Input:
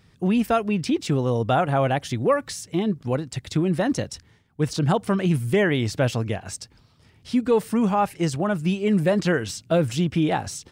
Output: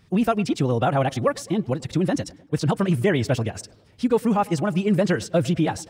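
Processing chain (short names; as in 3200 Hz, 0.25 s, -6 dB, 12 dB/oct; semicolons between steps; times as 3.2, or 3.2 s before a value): time stretch by phase-locked vocoder 0.55×; tape echo 0.104 s, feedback 65%, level -21 dB, low-pass 1800 Hz; gain +1 dB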